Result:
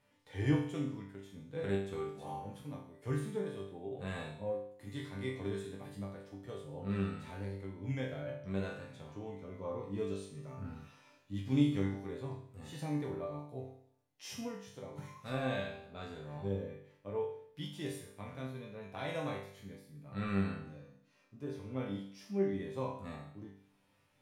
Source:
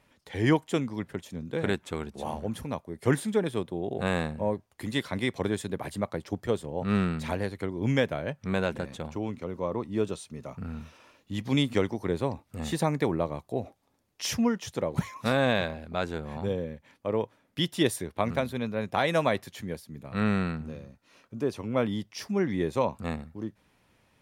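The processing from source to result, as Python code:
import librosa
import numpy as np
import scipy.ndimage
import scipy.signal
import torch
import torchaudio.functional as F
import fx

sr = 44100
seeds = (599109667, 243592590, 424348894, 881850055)

y = fx.rider(x, sr, range_db=10, speed_s=2.0)
y = fx.hpss(y, sr, part='percussive', gain_db=-9)
y = fx.resonator_bank(y, sr, root=43, chord='sus4', decay_s=0.61)
y = y * librosa.db_to_amplitude(7.5)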